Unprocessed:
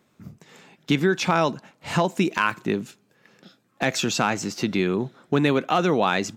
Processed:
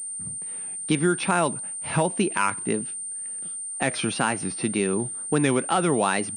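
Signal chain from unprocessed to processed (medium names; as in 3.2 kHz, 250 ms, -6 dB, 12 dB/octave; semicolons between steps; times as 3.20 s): wow and flutter 120 cents; class-D stage that switches slowly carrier 8.9 kHz; trim -1.5 dB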